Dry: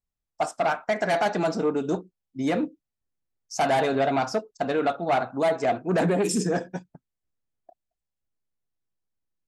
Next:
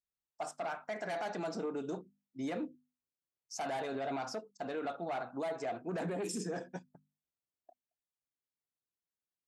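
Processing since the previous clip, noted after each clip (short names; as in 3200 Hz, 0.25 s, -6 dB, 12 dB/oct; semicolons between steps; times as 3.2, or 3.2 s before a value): HPF 150 Hz 6 dB/oct; notches 50/100/150/200/250 Hz; limiter -21.5 dBFS, peak gain reduction 8 dB; gain -8.5 dB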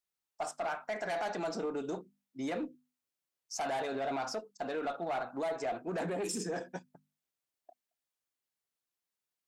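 low shelf 210 Hz -8 dB; in parallel at -4.5 dB: one-sided clip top -38.5 dBFS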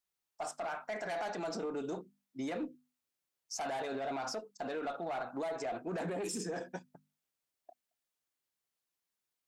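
limiter -31.5 dBFS, peak gain reduction 4.5 dB; gain +1 dB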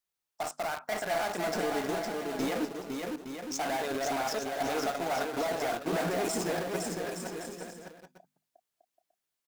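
in parallel at -3 dB: bit-crush 6-bit; on the sum: bouncing-ball echo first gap 0.51 s, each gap 0.7×, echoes 5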